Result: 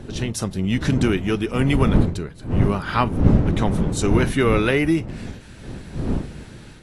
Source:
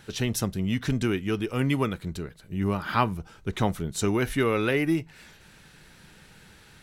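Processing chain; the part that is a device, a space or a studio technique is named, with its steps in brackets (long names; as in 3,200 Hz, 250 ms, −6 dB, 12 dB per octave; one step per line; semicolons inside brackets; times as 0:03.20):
smartphone video outdoors (wind on the microphone 200 Hz −26 dBFS; automatic gain control gain up to 6 dB; AAC 48 kbit/s 24,000 Hz)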